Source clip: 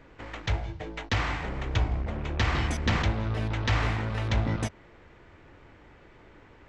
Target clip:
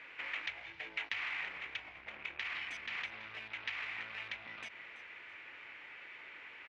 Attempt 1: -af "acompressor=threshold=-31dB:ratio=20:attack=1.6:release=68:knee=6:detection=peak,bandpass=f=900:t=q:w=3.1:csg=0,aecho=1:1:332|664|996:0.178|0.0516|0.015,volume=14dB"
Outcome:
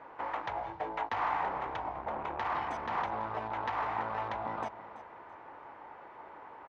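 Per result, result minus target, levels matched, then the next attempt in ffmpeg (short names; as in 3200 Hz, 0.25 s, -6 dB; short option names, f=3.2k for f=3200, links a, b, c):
1000 Hz band +13.0 dB; compressor: peak gain reduction -7.5 dB
-af "acompressor=threshold=-31dB:ratio=20:attack=1.6:release=68:knee=6:detection=peak,bandpass=f=2.4k:t=q:w=3.1:csg=0,aecho=1:1:332|664|996:0.178|0.0516|0.015,volume=14dB"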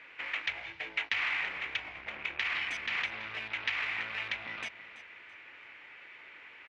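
compressor: peak gain reduction -7.5 dB
-af "acompressor=threshold=-39dB:ratio=20:attack=1.6:release=68:knee=6:detection=peak,bandpass=f=2.4k:t=q:w=3.1:csg=0,aecho=1:1:332|664|996:0.178|0.0516|0.015,volume=14dB"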